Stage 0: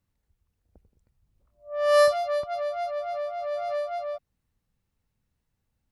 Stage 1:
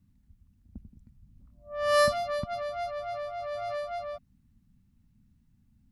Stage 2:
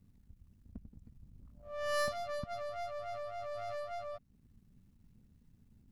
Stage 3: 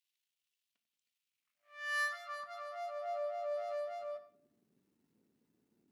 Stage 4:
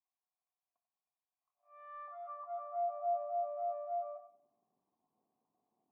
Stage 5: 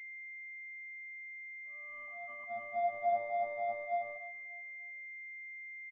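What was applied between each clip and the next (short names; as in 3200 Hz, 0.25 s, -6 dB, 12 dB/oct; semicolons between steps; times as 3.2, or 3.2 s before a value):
resonant low shelf 330 Hz +12 dB, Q 3
half-wave gain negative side -7 dB; compressor 1.5:1, threshold -54 dBFS, peak gain reduction 11.5 dB; gain +3 dB
high-pass sweep 3000 Hz -> 360 Hz, 1.14–3.93; shoebox room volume 110 m³, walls mixed, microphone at 0.33 m; gain -4.5 dB
in parallel at +2.5 dB: compressor 6:1, threshold -47 dBFS, peak gain reduction 14.5 dB; on the sum: hard clip -30.5 dBFS, distortion -20 dB; vocal tract filter a; gain +7.5 dB
G.711 law mismatch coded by A; feedback echo 0.295 s, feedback 44%, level -20 dB; pulse-width modulation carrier 2100 Hz; gain +6 dB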